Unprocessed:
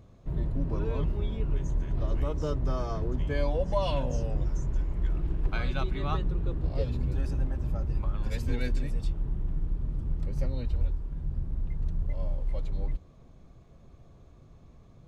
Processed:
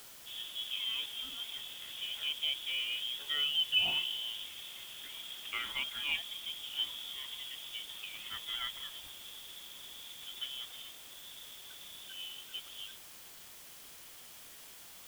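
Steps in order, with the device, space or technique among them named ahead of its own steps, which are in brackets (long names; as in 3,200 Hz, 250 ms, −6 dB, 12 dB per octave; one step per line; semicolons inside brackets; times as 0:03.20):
scrambled radio voice (band-pass filter 330–2,700 Hz; voice inversion scrambler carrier 3,600 Hz; white noise bed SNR 12 dB)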